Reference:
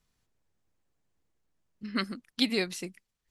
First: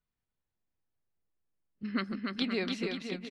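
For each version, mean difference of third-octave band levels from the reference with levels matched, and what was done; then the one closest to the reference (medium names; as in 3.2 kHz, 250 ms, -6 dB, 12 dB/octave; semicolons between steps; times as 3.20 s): 8.0 dB: compression, threshold -29 dBFS, peak gain reduction 8.5 dB; low-pass 3.3 kHz 12 dB/octave; spectral noise reduction 14 dB; on a send: bouncing-ball echo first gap 290 ms, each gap 0.8×, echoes 5; on the sum: trim +2 dB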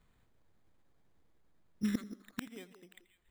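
10.5 dB: inverted gate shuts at -28 dBFS, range -28 dB; repeats whose band climbs or falls 177 ms, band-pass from 350 Hz, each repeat 1.4 oct, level -10 dB; careless resampling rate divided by 8×, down filtered, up hold; modulated delay 84 ms, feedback 41%, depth 74 cents, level -19 dB; trim +7.5 dB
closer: first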